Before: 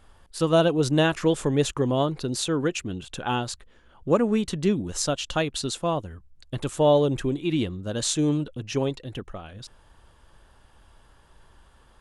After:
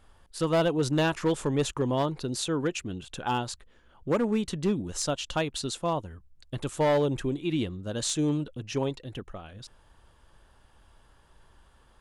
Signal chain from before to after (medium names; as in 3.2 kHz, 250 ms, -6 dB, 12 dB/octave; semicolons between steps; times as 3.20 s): dynamic bell 920 Hz, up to +6 dB, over -45 dBFS, Q 6.3; overload inside the chain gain 15.5 dB; trim -3.5 dB